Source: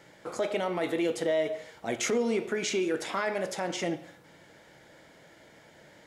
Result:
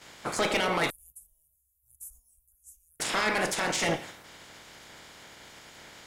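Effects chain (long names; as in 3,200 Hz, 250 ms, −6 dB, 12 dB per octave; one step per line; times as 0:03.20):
ceiling on every frequency bin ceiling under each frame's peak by 17 dB
0:00.90–0:03.00: inverse Chebyshev band-stop filter 170–4,400 Hz, stop band 60 dB
dynamic equaliser 8,600 Hz, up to +3 dB, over −57 dBFS, Q 1.9
harmonic generator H 4 −15 dB, 5 −15 dB, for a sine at −15 dBFS
noise gate −53 dBFS, range −7 dB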